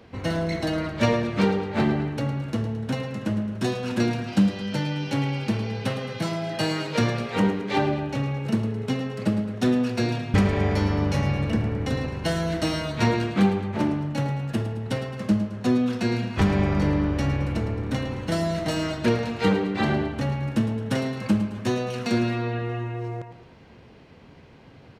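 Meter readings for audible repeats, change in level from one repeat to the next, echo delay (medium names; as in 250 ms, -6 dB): 2, -5.0 dB, 109 ms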